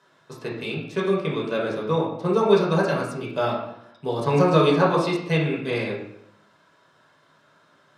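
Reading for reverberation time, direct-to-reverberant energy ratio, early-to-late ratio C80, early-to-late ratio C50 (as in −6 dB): 0.80 s, −4.5 dB, 7.0 dB, 3.5 dB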